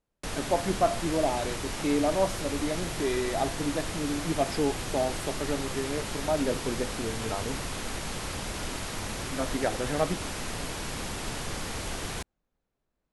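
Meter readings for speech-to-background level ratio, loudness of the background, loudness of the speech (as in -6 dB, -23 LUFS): 3.5 dB, -34.5 LUFS, -31.0 LUFS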